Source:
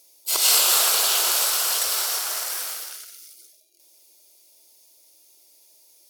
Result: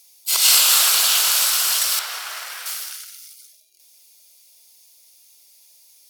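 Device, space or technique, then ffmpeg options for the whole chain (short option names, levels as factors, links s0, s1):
filter by subtraction: -filter_complex "[0:a]asettb=1/sr,asplit=3[s0][s1][s2];[s0]atrim=end=1.994[s3];[s1]atrim=start=1.99:end=2.66,asetpts=PTS-STARTPTS,afade=t=in:d=0.004:c=qsin,afade=t=out:st=0.666:d=0.004:c=qsin,bass=f=250:g=-12,treble=f=4000:g=-12[s4];[s2]atrim=start=2.656[s5];[s3][s4]acrossfade=d=0.004:c1=hsin:c2=qsin[s6];[s6][s5]acrossfade=d=0.004:c1=qsin:c2=hsin,asplit=2[s7][s8];[s8]lowpass=2100,volume=-1[s9];[s7][s9]amix=inputs=2:normalize=0,volume=1.41"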